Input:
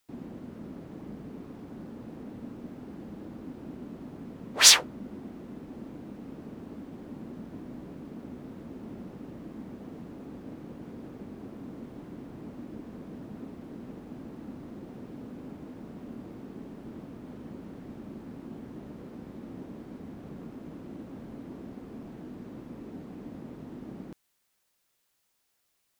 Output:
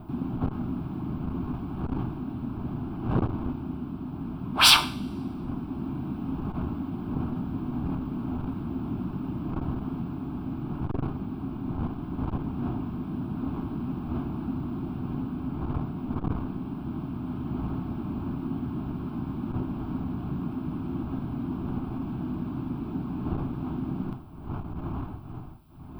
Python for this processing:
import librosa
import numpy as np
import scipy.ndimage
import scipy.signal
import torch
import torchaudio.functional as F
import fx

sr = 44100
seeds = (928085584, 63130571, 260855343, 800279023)

y = fx.dmg_wind(x, sr, seeds[0], corner_hz=420.0, level_db=-45.0)
y = fx.graphic_eq_10(y, sr, hz=(125, 4000, 16000), db=(5, -7, -10))
y = fx.rider(y, sr, range_db=4, speed_s=2.0)
y = fx.fixed_phaser(y, sr, hz=1900.0, stages=6)
y = fx.rev_double_slope(y, sr, seeds[1], early_s=0.44, late_s=1.5, knee_db=-22, drr_db=9.0)
y = fx.transformer_sat(y, sr, knee_hz=580.0)
y = y * librosa.db_to_amplitude(8.0)